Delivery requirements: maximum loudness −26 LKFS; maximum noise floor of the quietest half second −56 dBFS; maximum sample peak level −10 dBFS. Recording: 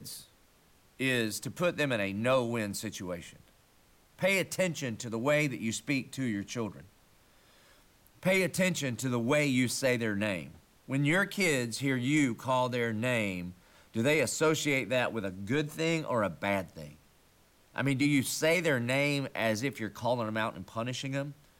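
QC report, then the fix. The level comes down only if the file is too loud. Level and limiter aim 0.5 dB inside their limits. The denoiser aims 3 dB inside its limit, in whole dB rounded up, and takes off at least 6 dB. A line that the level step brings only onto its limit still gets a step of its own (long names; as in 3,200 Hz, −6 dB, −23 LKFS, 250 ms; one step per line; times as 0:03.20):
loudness −30.5 LKFS: in spec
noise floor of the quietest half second −64 dBFS: in spec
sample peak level −18.5 dBFS: in spec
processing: no processing needed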